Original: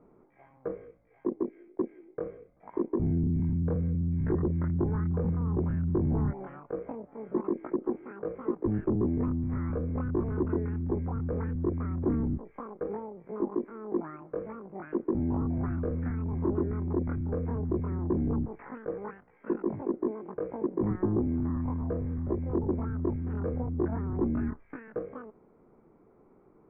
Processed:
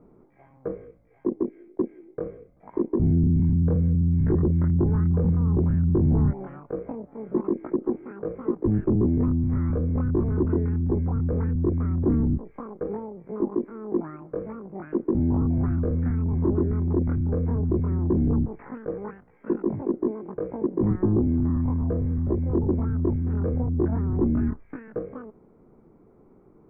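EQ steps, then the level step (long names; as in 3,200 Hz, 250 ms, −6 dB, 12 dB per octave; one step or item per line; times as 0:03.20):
low-shelf EQ 390 Hz +8.5 dB
0.0 dB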